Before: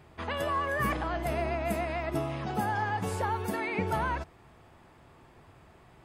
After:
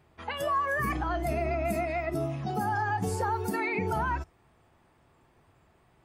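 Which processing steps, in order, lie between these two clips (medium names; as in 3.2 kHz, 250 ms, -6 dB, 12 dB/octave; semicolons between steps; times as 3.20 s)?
spectral noise reduction 11 dB; peak limiter -24 dBFS, peak gain reduction 6 dB; trim +3.5 dB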